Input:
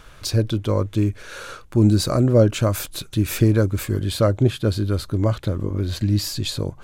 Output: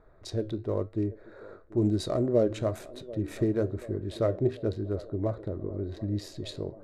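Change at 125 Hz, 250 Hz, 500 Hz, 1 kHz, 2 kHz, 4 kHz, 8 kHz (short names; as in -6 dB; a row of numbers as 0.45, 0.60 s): -13.5, -9.0, -6.0, -10.5, -15.0, -15.5, -18.5 dB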